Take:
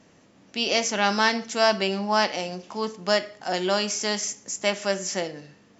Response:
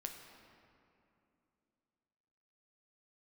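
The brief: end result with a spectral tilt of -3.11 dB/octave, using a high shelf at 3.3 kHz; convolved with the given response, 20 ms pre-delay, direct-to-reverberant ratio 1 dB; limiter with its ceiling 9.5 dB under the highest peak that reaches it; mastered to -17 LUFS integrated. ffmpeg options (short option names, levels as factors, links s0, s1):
-filter_complex "[0:a]highshelf=f=3300:g=-4,alimiter=limit=0.168:level=0:latency=1,asplit=2[s0][s1];[1:a]atrim=start_sample=2205,adelay=20[s2];[s1][s2]afir=irnorm=-1:irlink=0,volume=1.19[s3];[s0][s3]amix=inputs=2:normalize=0,volume=2.99"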